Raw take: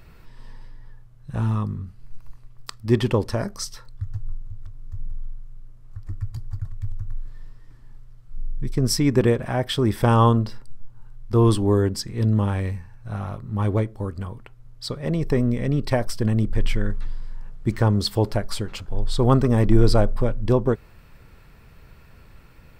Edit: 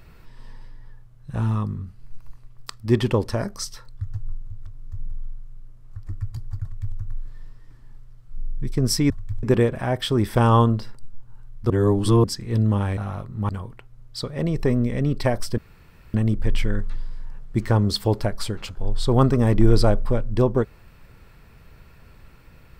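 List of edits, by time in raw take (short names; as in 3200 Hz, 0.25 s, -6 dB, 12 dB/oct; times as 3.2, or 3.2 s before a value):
6.63–6.96 copy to 9.1
11.37–11.91 reverse
12.64–13.11 cut
13.63–14.16 cut
16.25 insert room tone 0.56 s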